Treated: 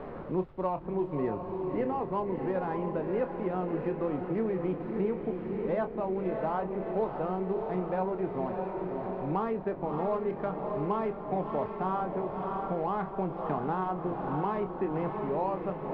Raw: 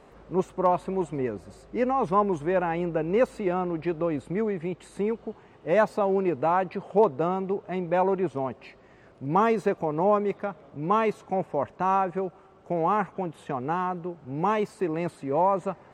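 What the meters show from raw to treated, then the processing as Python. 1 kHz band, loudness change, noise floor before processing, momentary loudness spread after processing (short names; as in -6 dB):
-7.0 dB, -5.5 dB, -54 dBFS, 3 LU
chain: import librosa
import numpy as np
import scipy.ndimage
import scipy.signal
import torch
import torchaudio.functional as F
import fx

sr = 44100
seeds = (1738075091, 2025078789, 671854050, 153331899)

y = scipy.ndimage.median_filter(x, 15, mode='constant')
y = fx.rider(y, sr, range_db=10, speed_s=0.5)
y = fx.wow_flutter(y, sr, seeds[0], rate_hz=2.1, depth_cents=22.0)
y = fx.dmg_noise_colour(y, sr, seeds[1], colour='brown', level_db=-50.0)
y = fx.air_absorb(y, sr, metres=430.0)
y = fx.doubler(y, sr, ms=27.0, db=-9.5)
y = fx.echo_diffused(y, sr, ms=619, feedback_pct=57, wet_db=-6.5)
y = fx.band_squash(y, sr, depth_pct=70)
y = F.gain(torch.from_numpy(y), -6.0).numpy()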